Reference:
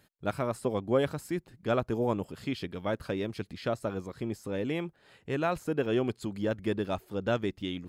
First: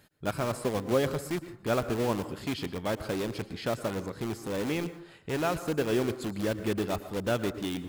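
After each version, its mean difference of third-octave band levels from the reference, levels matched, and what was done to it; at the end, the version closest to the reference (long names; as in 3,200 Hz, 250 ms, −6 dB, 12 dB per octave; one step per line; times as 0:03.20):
7.5 dB: in parallel at −6 dB: wrap-around overflow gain 30.5 dB
on the sum: dense smooth reverb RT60 0.56 s, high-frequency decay 0.45×, pre-delay 100 ms, DRR 12.5 dB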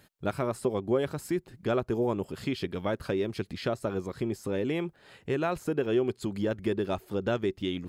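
1.5 dB: dynamic equaliser 380 Hz, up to +8 dB, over −48 dBFS, Q 7.6
downward compressor 2 to 1, threshold −34 dBFS, peak gain reduction 9 dB
level +5 dB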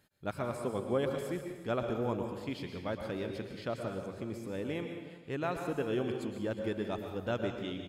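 6.0 dB: on a send: single-tap delay 360 ms −16.5 dB
on the sum: dense smooth reverb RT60 1 s, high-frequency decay 0.95×, pre-delay 100 ms, DRR 4.5 dB
level −5.5 dB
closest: second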